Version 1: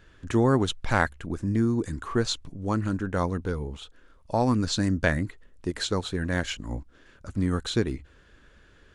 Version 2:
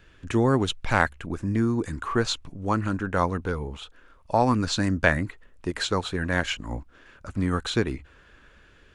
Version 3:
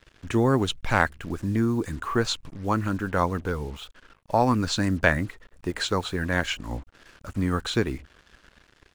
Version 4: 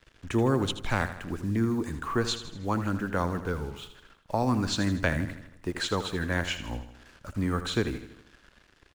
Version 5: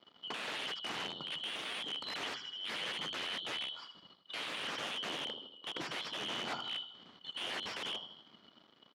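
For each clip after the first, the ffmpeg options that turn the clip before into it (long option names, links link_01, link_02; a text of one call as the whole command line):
ffmpeg -i in.wav -filter_complex "[0:a]acrossover=split=720|1700[link_01][link_02][link_03];[link_02]dynaudnorm=framelen=760:gausssize=3:maxgain=7.5dB[link_04];[link_03]equalizer=frequency=2500:width_type=o:width=0.57:gain=6[link_05];[link_01][link_04][link_05]amix=inputs=3:normalize=0" out.wav
ffmpeg -i in.wav -af "acrusher=bits=7:mix=0:aa=0.5" out.wav
ffmpeg -i in.wav -filter_complex "[0:a]acrossover=split=420|3000[link_01][link_02][link_03];[link_02]acompressor=threshold=-23dB:ratio=6[link_04];[link_01][link_04][link_03]amix=inputs=3:normalize=0,asplit=2[link_05][link_06];[link_06]aecho=0:1:80|160|240|320|400|480:0.266|0.138|0.0719|0.0374|0.0195|0.0101[link_07];[link_05][link_07]amix=inputs=2:normalize=0,volume=-3dB" out.wav
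ffmpeg -i in.wav -af "afftfilt=real='real(if(lt(b,272),68*(eq(floor(b/68),0)*1+eq(floor(b/68),1)*3+eq(floor(b/68),2)*0+eq(floor(b/68),3)*2)+mod(b,68),b),0)':imag='imag(if(lt(b,272),68*(eq(floor(b/68),0)*1+eq(floor(b/68),1)*3+eq(floor(b/68),2)*0+eq(floor(b/68),3)*2)+mod(b,68),b),0)':win_size=2048:overlap=0.75,aeval=exprs='(mod(22.4*val(0)+1,2)-1)/22.4':channel_layout=same,highpass=210,lowpass=2600" out.wav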